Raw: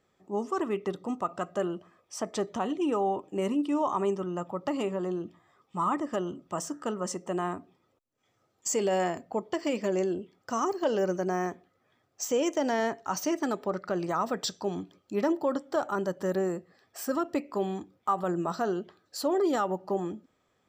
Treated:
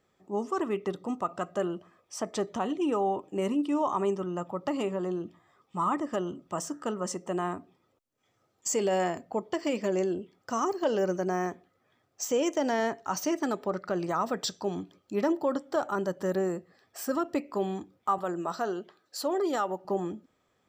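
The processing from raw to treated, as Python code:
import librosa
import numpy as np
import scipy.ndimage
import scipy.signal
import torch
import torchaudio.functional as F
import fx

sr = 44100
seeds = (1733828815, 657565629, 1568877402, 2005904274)

y = fx.highpass(x, sr, hz=350.0, slope=6, at=(18.18, 19.85))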